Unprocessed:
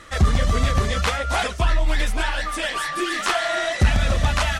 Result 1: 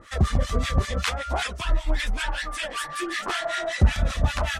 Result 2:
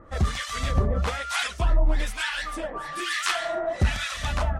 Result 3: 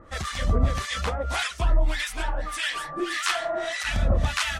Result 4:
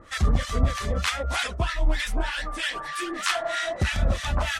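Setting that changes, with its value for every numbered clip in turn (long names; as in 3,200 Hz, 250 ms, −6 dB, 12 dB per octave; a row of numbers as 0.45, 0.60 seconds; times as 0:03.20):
two-band tremolo in antiphase, speed: 5.2, 1.1, 1.7, 3.2 Hertz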